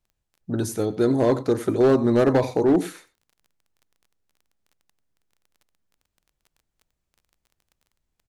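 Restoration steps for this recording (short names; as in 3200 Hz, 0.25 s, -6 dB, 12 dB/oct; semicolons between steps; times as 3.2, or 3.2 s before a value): clip repair -12 dBFS; de-click; inverse comb 90 ms -17 dB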